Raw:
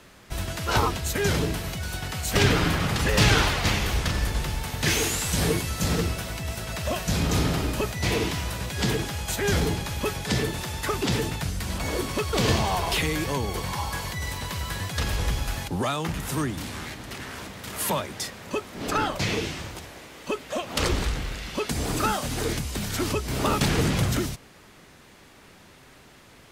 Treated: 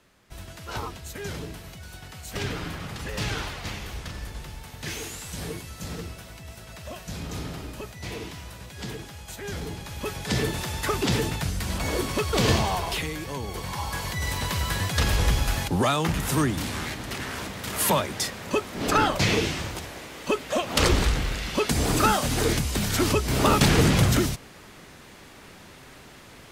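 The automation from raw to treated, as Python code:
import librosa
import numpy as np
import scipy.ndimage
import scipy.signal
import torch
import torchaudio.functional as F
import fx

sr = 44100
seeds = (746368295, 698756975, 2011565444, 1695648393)

y = fx.gain(x, sr, db=fx.line((9.58, -10.5), (10.47, 1.0), (12.56, 1.0), (13.21, -7.0), (14.41, 4.0)))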